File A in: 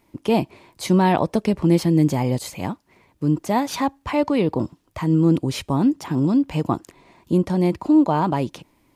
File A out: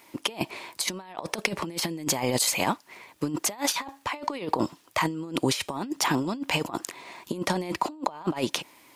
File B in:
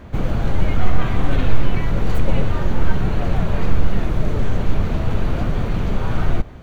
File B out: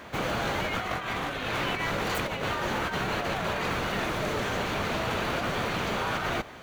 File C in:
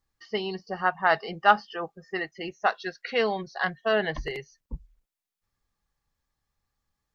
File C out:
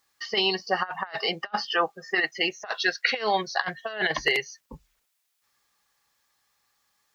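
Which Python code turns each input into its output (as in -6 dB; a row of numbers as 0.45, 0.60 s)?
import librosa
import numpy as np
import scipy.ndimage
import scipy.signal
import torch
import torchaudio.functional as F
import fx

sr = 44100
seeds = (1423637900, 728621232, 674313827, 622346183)

y = fx.highpass(x, sr, hz=1200.0, slope=6)
y = fx.over_compress(y, sr, threshold_db=-35.0, ratio=-0.5)
y = y * 10.0 ** (-30 / 20.0) / np.sqrt(np.mean(np.square(y)))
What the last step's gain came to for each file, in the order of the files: +7.0, +6.0, +9.5 dB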